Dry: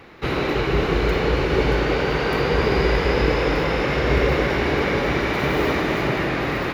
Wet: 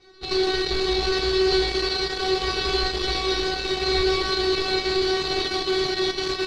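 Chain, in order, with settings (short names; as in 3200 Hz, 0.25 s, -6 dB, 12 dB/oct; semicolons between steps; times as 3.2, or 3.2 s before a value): half-waves squared off; low shelf 470 Hz +5.5 dB; resonator 360 Hz, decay 0.42 s, harmonics all, mix 100%; in parallel at -6 dB: bit-crush 5-bit; on the sum: synth low-pass 4100 Hz, resonance Q 7.2; speed mistake 24 fps film run at 25 fps; gain +1.5 dB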